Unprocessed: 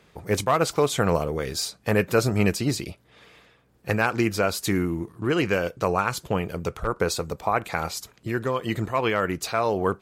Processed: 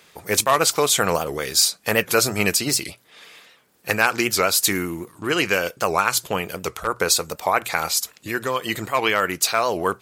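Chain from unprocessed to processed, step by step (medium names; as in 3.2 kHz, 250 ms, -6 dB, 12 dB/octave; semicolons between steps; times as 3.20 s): tilt EQ +3 dB/octave; hum notches 60/120 Hz; warped record 78 rpm, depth 160 cents; trim +4 dB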